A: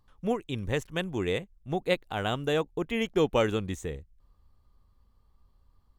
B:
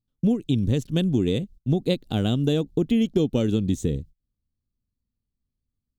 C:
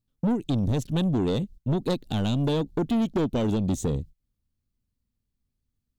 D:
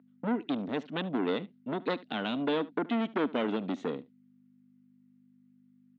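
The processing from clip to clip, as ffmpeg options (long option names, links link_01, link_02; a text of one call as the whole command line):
ffmpeg -i in.wav -af "agate=range=-28dB:threshold=-50dB:ratio=16:detection=peak,equalizer=frequency=125:width_type=o:width=1:gain=8,equalizer=frequency=250:width_type=o:width=1:gain=11,equalizer=frequency=1000:width_type=o:width=1:gain=-12,equalizer=frequency=2000:width_type=o:width=1:gain=-10,equalizer=frequency=4000:width_type=o:width=1:gain=7,acompressor=threshold=-25dB:ratio=6,volume=7dB" out.wav
ffmpeg -i in.wav -af "asoftclip=type=tanh:threshold=-22.5dB,volume=2.5dB" out.wav
ffmpeg -i in.wav -af "aeval=exprs='val(0)+0.00708*(sin(2*PI*50*n/s)+sin(2*PI*2*50*n/s)/2+sin(2*PI*3*50*n/s)/3+sin(2*PI*4*50*n/s)/4+sin(2*PI*5*50*n/s)/5)':channel_layout=same,highpass=frequency=270:width=0.5412,highpass=frequency=270:width=1.3066,equalizer=frequency=360:width_type=q:width=4:gain=-7,equalizer=frequency=530:width_type=q:width=4:gain=-5,equalizer=frequency=830:width_type=q:width=4:gain=-3,equalizer=frequency=1400:width_type=q:width=4:gain=5,equalizer=frequency=2000:width_type=q:width=4:gain=6,lowpass=frequency=3200:width=0.5412,lowpass=frequency=3200:width=1.3066,aecho=1:1:73:0.0944,volume=1dB" out.wav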